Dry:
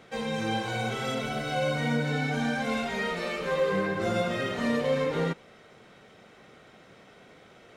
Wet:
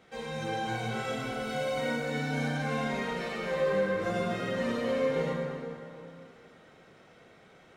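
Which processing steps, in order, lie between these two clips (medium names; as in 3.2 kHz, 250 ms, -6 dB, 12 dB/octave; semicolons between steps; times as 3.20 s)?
1.41–2.48 s: treble shelf 7.3 kHz +6.5 dB; plate-style reverb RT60 2.8 s, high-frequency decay 0.6×, DRR -2 dB; trim -7.5 dB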